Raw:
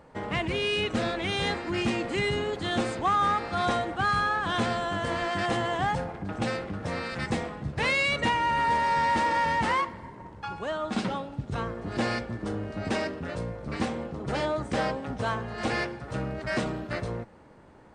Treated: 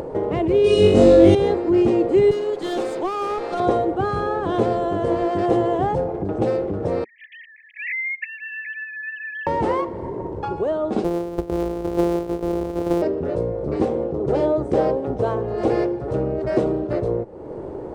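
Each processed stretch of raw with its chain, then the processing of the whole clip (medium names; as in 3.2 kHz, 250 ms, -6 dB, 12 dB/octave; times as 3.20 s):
0.64–1.35 s: tone controls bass +5 dB, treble +11 dB + flutter echo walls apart 3.6 m, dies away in 0.82 s
2.31–3.60 s: high-pass 140 Hz 24 dB/octave + tilt shelf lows -8 dB, about 740 Hz + valve stage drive 25 dB, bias 0.65
7.04–9.47 s: formants replaced by sine waves + brick-wall FIR high-pass 1.8 kHz + frequency shift -120 Hz
11.04–13.02 s: sorted samples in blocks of 256 samples + peaking EQ 130 Hz -10.5 dB 0.6 oct
whole clip: FFT filter 140 Hz 0 dB, 230 Hz -3 dB, 380 Hz +12 dB, 1.7 kHz -13 dB; upward compressor, threshold -25 dBFS; trim +5.5 dB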